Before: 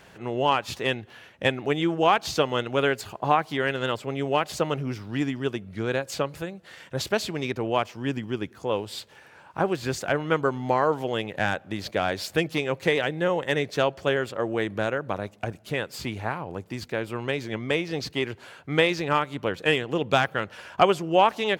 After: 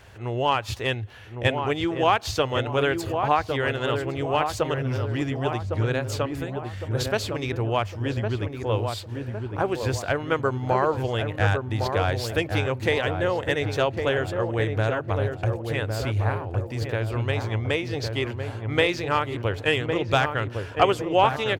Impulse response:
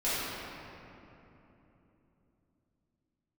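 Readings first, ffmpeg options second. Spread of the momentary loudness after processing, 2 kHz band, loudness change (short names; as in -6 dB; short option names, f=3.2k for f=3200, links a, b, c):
6 LU, +0.5 dB, +1.0 dB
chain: -filter_complex "[0:a]lowshelf=f=130:t=q:w=3:g=8,asplit=2[a][b];[b]adelay=1108,lowpass=f=1.1k:p=1,volume=-4.5dB,asplit=2[c][d];[d]adelay=1108,lowpass=f=1.1k:p=1,volume=0.54,asplit=2[e][f];[f]adelay=1108,lowpass=f=1.1k:p=1,volume=0.54,asplit=2[g][h];[h]adelay=1108,lowpass=f=1.1k:p=1,volume=0.54,asplit=2[i][j];[j]adelay=1108,lowpass=f=1.1k:p=1,volume=0.54,asplit=2[k][l];[l]adelay=1108,lowpass=f=1.1k:p=1,volume=0.54,asplit=2[m][n];[n]adelay=1108,lowpass=f=1.1k:p=1,volume=0.54[o];[a][c][e][g][i][k][m][o]amix=inputs=8:normalize=0"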